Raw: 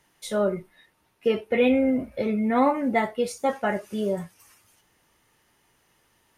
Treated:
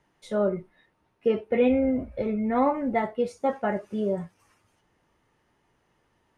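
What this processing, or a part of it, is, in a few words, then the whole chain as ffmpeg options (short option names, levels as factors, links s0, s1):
through cloth: -filter_complex "[0:a]asplit=3[s0][s1][s2];[s0]afade=t=out:st=1.68:d=0.02[s3];[s1]asubboost=boost=5.5:cutoff=88,afade=t=in:st=1.68:d=0.02,afade=t=out:st=3.03:d=0.02[s4];[s2]afade=t=in:st=3.03:d=0.02[s5];[s3][s4][s5]amix=inputs=3:normalize=0,lowpass=9100,highshelf=f=2100:g=-12.5"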